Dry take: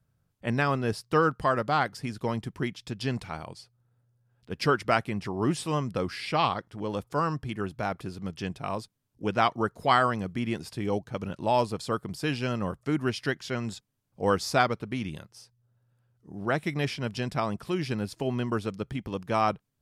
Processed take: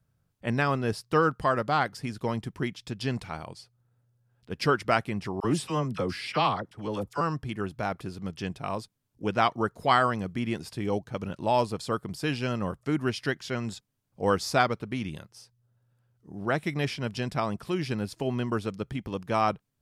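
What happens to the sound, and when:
5.40–7.21 s: phase dispersion lows, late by 41 ms, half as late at 960 Hz

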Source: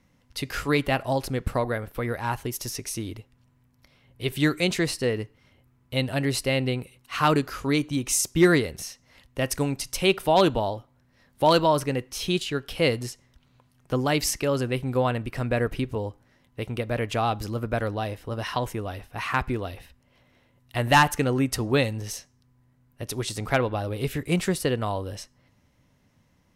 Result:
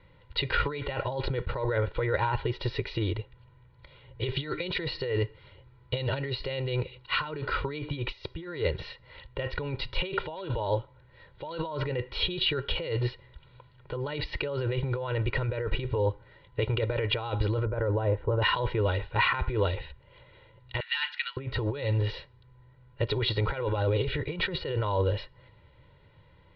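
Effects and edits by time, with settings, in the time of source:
4.29–7.25 s: peaking EQ 5.6 kHz +7 dB
17.65–18.42 s: low-pass 1.2 kHz
20.80–21.37 s: Bessel high-pass 2.5 kHz, order 6
whole clip: compressor with a negative ratio -31 dBFS, ratio -1; steep low-pass 4.2 kHz 72 dB/octave; comb 2.1 ms, depth 99%; trim -1 dB

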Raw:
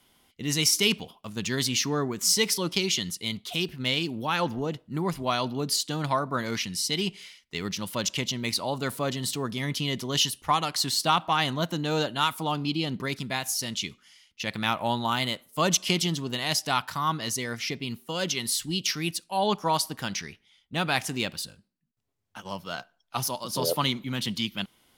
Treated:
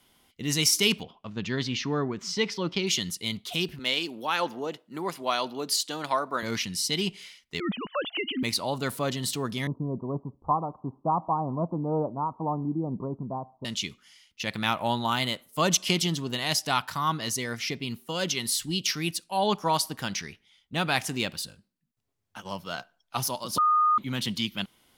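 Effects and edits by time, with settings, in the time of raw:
1.03–2.87 s: distance through air 190 m
3.79–6.43 s: high-pass 340 Hz
7.60–8.43 s: formants replaced by sine waves
9.67–13.65 s: steep low-pass 1.1 kHz 72 dB/octave
23.58–23.98 s: bleep 1.23 kHz -18.5 dBFS

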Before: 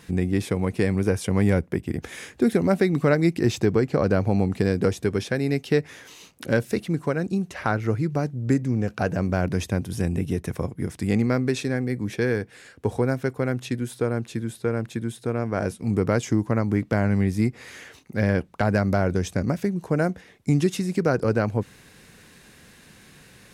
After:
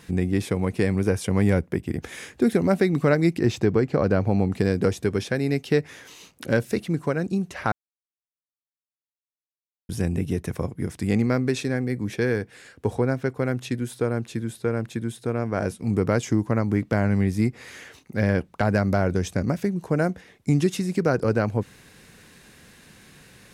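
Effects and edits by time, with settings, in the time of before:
3.38–4.52 s: treble shelf 5.8 kHz -7.5 dB
7.72–9.89 s: mute
12.95–13.37 s: treble shelf 8.1 kHz -10 dB

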